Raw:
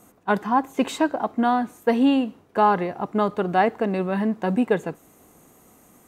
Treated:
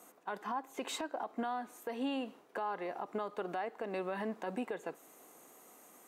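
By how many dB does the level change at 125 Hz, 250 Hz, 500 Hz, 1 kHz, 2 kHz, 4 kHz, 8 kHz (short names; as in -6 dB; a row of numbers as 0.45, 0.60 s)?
-22.5 dB, -19.0 dB, -15.5 dB, -16.5 dB, -15.0 dB, -10.5 dB, n/a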